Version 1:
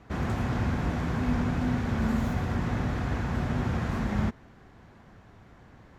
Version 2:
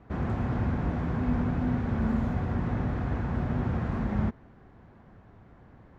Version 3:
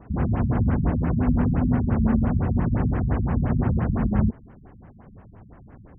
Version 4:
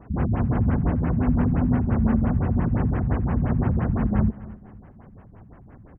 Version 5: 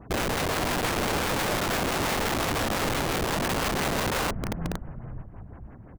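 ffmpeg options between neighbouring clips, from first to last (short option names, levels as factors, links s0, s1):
-af "lowpass=f=1200:p=1"
-af "afftfilt=real='re*lt(b*sr/1024,220*pow(3300/220,0.5+0.5*sin(2*PI*5.8*pts/sr)))':imag='im*lt(b*sr/1024,220*pow(3300/220,0.5+0.5*sin(2*PI*5.8*pts/sr)))':win_size=1024:overlap=0.75,volume=2.24"
-af "aecho=1:1:249|498|747:0.126|0.0453|0.0163"
-filter_complex "[0:a]asplit=5[s0][s1][s2][s3][s4];[s1]adelay=458,afreqshift=-41,volume=0.316[s5];[s2]adelay=916,afreqshift=-82,volume=0.13[s6];[s3]adelay=1374,afreqshift=-123,volume=0.0531[s7];[s4]adelay=1832,afreqshift=-164,volume=0.0219[s8];[s0][s5][s6][s7][s8]amix=inputs=5:normalize=0,aeval=exprs='(mod(12.6*val(0)+1,2)-1)/12.6':c=same"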